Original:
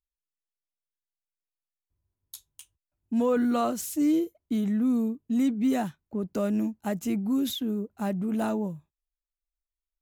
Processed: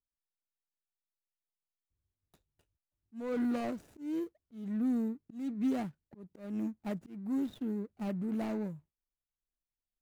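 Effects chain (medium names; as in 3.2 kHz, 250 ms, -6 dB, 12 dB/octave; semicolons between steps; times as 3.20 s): median filter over 41 samples; slow attack 306 ms; trim -6 dB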